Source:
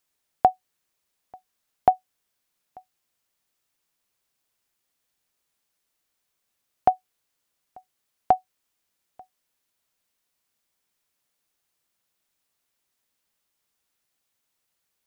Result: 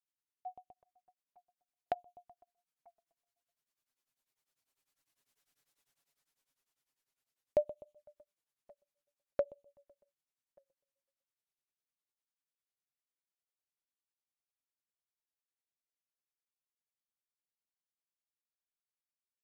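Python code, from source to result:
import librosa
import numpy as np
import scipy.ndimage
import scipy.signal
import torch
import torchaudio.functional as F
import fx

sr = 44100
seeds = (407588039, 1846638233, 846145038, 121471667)

p1 = fx.speed_glide(x, sr, from_pct=98, to_pct=57)
p2 = fx.doppler_pass(p1, sr, speed_mps=7, closest_m=4.0, pass_at_s=5.59)
p3 = p2 + fx.echo_feedback(p2, sr, ms=126, feedback_pct=60, wet_db=-19.5, dry=0)
p4 = fx.env_flanger(p3, sr, rest_ms=7.8, full_db=-45.0)
p5 = p4 * np.abs(np.cos(np.pi * 10.0 * np.arange(len(p4)) / sr))
y = p5 * librosa.db_to_amplitude(4.0)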